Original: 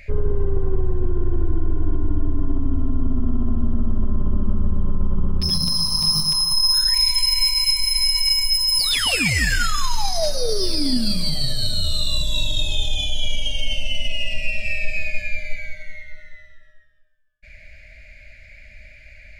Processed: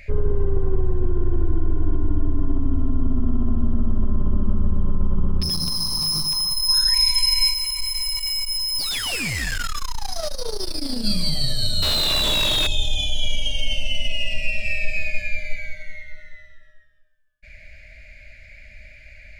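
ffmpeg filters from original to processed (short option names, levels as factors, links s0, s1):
-filter_complex "[0:a]asettb=1/sr,asplit=3[s0][s1][s2];[s0]atrim=end=5.434[s3];[s1]atrim=start=5.43:end=6.69,asetpts=PTS-STARTPTS,afade=t=in:d=0.004:c=qsin,afade=t=out:st=1.256:d=0.004:c=qsin,asoftclip=type=hard:threshold=0.1[s4];[s2]atrim=start=6.686[s5];[s3][s4]acrossfade=d=0.004:c1=hsin:c2=qsin[s6];[s6][s5]acrossfade=d=0.004:c1=qsin:c2=hsin,asplit=3[s7][s8][s9];[s7]afade=t=out:st=7.52:d=0.02[s10];[s8]aeval=exprs='(tanh(12.6*val(0)+0.45)-tanh(0.45))/12.6':c=same,afade=t=in:st=7.52:d=0.02,afade=t=out:st=11.03:d=0.02[s11];[s9]afade=t=in:st=11.03:d=0.02[s12];[s10][s11][s12]amix=inputs=3:normalize=0,asettb=1/sr,asplit=3[s13][s14][s15];[s13]atrim=end=11.824[s16];[s14]atrim=start=11.82:end=12.67,asetpts=PTS-STARTPTS,afade=t=in:d=0.004:c=qsin,afade=t=out:st=0.846:d=0.004:c=qsin,asplit=2[s17][s18];[s18]highpass=f=720:p=1,volume=89.1,asoftclip=type=tanh:threshold=0.355[s19];[s17][s19]amix=inputs=2:normalize=0,lowpass=f=2000:p=1,volume=0.501[s20];[s15]atrim=start=12.666[s21];[s16][s20]acrossfade=d=0.004:c1=hsin:c2=qsin[s22];[s22][s21]acrossfade=d=0.004:c1=qsin:c2=hsin"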